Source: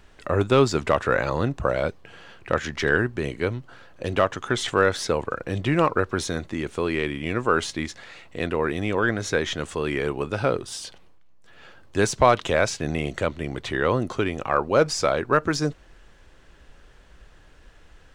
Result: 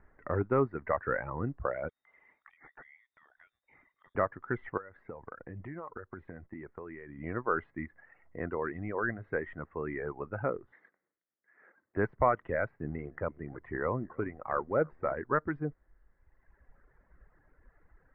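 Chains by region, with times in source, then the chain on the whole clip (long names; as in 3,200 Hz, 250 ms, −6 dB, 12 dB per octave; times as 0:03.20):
0:01.89–0:04.15: voice inversion scrambler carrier 3,700 Hz + downward compressor, threshold −38 dBFS
0:04.77–0:07.18: downward compressor 5 to 1, threshold −29 dBFS + downward expander −40 dBFS
0:10.72–0:11.97: lower of the sound and its delayed copy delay 0.53 ms + high-pass filter 320 Hz
0:12.71–0:15.17: one scale factor per block 5 bits + high-shelf EQ 3,200 Hz −10 dB + single-tap delay 303 ms −16.5 dB
whole clip: Chebyshev low-pass filter 2,000 Hz, order 5; reverb reduction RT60 1.5 s; level −8 dB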